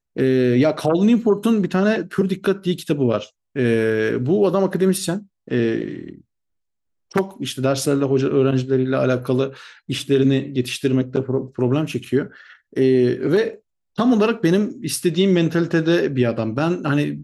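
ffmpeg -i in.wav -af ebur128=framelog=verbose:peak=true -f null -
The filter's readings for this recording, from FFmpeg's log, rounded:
Integrated loudness:
  I:         -19.6 LUFS
  Threshold: -29.9 LUFS
Loudness range:
  LRA:         3.4 LU
  Threshold: -40.4 LUFS
  LRA low:   -22.3 LUFS
  LRA high:  -18.9 LUFS
True peak:
  Peak:       -5.2 dBFS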